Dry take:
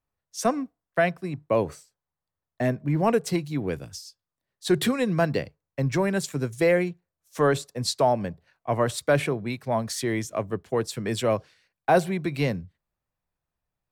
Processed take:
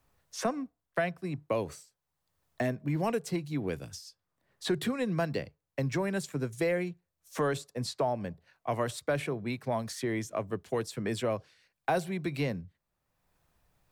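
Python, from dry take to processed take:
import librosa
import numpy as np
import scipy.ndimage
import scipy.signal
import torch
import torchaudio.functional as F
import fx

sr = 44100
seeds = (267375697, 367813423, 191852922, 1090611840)

y = fx.band_squash(x, sr, depth_pct=70)
y = F.gain(torch.from_numpy(y), -7.0).numpy()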